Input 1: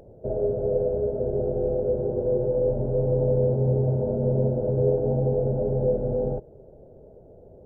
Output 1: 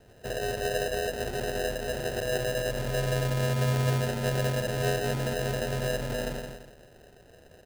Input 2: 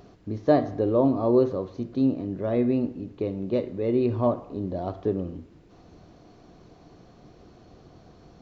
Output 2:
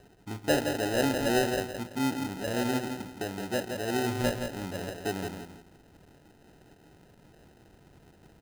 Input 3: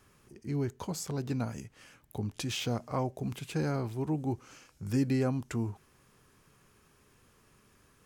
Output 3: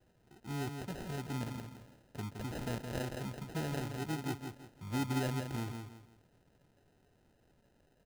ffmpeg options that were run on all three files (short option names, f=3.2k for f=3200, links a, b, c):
-af "aecho=1:1:168|336|504|672:0.501|0.155|0.0482|0.0149,acrusher=samples=39:mix=1:aa=0.000001,volume=-6.5dB"